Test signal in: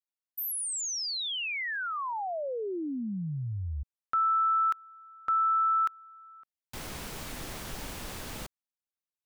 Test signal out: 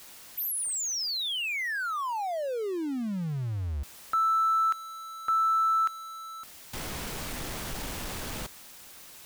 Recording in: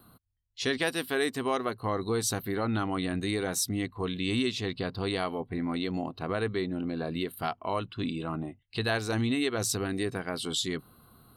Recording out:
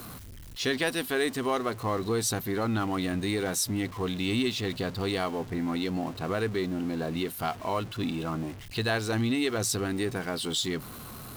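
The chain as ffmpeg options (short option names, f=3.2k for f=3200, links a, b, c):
-af "aeval=exprs='val(0)+0.5*0.0126*sgn(val(0))':c=same"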